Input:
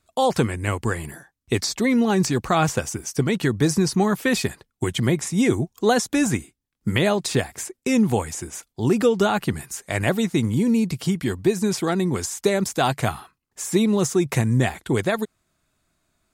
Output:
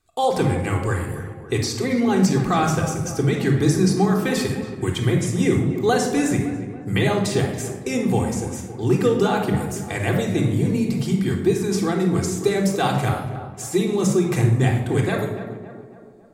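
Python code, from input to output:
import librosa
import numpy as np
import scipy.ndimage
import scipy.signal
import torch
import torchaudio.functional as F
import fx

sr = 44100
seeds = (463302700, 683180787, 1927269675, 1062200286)

y = fx.echo_tape(x, sr, ms=279, feedback_pct=58, wet_db=-9, lp_hz=1600.0, drive_db=12.0, wow_cents=26)
y = fx.room_shoebox(y, sr, seeds[0], volume_m3=2600.0, walls='furnished', distance_m=3.7)
y = y * librosa.db_to_amplitude(-4.0)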